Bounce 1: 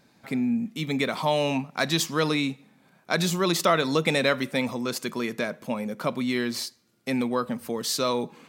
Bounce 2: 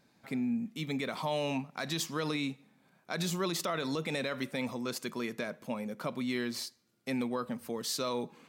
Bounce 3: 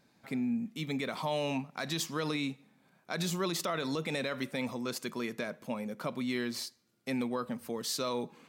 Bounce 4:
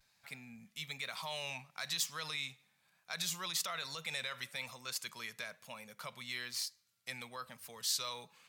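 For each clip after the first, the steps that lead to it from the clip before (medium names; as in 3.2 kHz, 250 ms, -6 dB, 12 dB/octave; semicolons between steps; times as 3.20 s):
peak limiter -16 dBFS, peak gain reduction 8 dB; trim -7 dB
no audible change
vibrato 1.1 Hz 49 cents; amplifier tone stack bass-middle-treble 10-0-10; trim +2 dB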